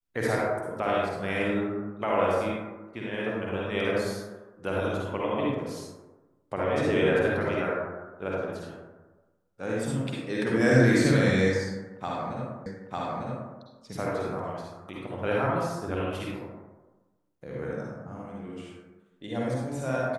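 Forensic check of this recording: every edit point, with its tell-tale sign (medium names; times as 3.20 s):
12.66 s: repeat of the last 0.9 s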